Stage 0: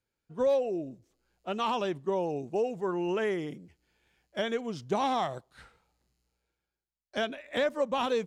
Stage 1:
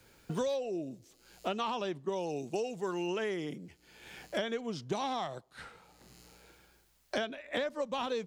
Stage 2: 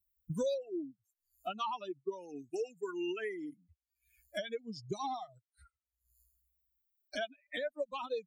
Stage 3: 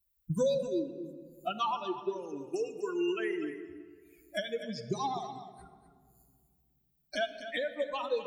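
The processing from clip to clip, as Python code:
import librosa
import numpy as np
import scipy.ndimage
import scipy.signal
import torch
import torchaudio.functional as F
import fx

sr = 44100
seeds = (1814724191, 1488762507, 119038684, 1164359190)

y1 = fx.dynamic_eq(x, sr, hz=4600.0, q=1.3, threshold_db=-53.0, ratio=4.0, max_db=7)
y1 = fx.band_squash(y1, sr, depth_pct=100)
y1 = F.gain(torch.from_numpy(y1), -5.5).numpy()
y2 = fx.bin_expand(y1, sr, power=3.0)
y2 = F.gain(torch.from_numpy(y2), 2.5).numpy()
y3 = y2 + 10.0 ** (-11.5 / 20.0) * np.pad(y2, (int(248 * sr / 1000.0), 0))[:len(y2)]
y3 = fx.room_shoebox(y3, sr, seeds[0], volume_m3=3500.0, walls='mixed', distance_m=0.78)
y3 = F.gain(torch.from_numpy(y3), 4.0).numpy()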